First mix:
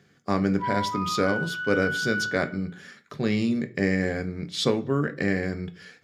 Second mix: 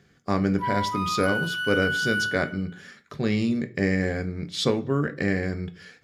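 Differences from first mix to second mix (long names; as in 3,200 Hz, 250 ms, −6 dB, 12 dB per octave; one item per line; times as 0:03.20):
background: remove moving average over 12 samples
master: remove high-pass filter 100 Hz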